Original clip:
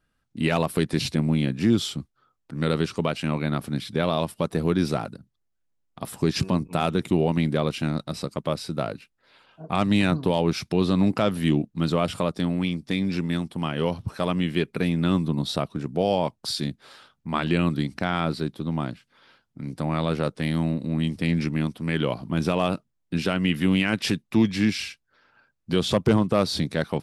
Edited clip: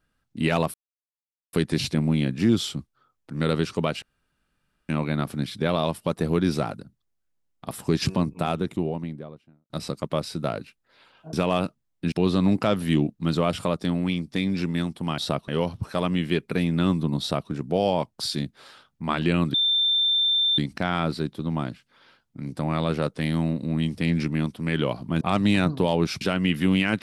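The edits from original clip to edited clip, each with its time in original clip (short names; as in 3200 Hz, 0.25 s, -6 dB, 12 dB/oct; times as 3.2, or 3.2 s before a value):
0.74 insert silence 0.79 s
3.23 insert room tone 0.87 s
6.41–8.04 studio fade out
9.67–10.67 swap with 22.42–23.21
15.45–15.75 copy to 13.73
17.79 add tone 3570 Hz -18.5 dBFS 1.04 s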